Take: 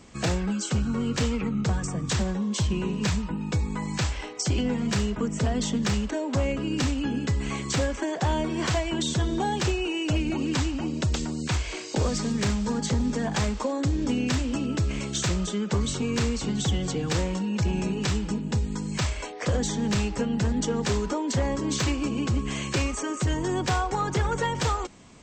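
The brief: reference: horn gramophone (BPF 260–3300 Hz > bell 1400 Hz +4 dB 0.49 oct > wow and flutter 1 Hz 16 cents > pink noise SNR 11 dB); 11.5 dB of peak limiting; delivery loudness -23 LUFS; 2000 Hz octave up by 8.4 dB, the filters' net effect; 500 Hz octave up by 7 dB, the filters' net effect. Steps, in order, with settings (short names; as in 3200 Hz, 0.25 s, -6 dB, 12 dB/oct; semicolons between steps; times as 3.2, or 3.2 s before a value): bell 500 Hz +8.5 dB; bell 2000 Hz +9 dB; limiter -21.5 dBFS; BPF 260–3300 Hz; bell 1400 Hz +4 dB 0.49 oct; wow and flutter 1 Hz 16 cents; pink noise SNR 11 dB; gain +8 dB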